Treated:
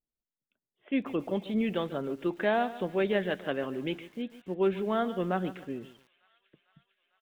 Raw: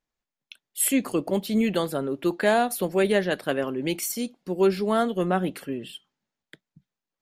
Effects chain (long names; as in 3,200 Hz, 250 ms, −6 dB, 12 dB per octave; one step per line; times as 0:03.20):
downsampling to 8,000 Hz
low-pass that shuts in the quiet parts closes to 480 Hz, open at −21.5 dBFS
delay with a high-pass on its return 450 ms, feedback 73%, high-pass 2,300 Hz, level −21.5 dB
feedback echo at a low word length 143 ms, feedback 35%, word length 7 bits, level −15 dB
level −6 dB